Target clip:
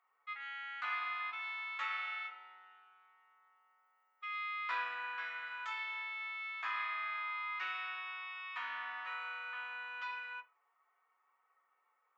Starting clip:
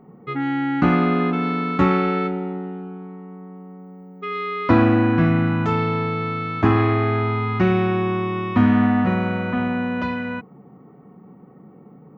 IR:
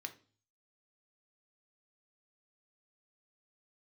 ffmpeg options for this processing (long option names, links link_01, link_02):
-filter_complex "[0:a]highpass=frequency=1100:width=0.5412,highpass=frequency=1100:width=1.3066[link_01];[1:a]atrim=start_sample=2205,asetrate=61740,aresample=44100[link_02];[link_01][link_02]afir=irnorm=-1:irlink=0,volume=-5dB"